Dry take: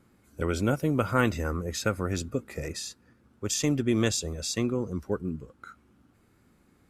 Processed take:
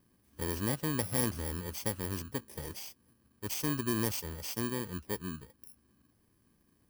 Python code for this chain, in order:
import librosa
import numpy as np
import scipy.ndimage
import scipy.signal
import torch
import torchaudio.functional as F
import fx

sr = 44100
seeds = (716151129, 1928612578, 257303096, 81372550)

y = fx.bit_reversed(x, sr, seeds[0], block=32)
y = F.gain(torch.from_numpy(y), -7.0).numpy()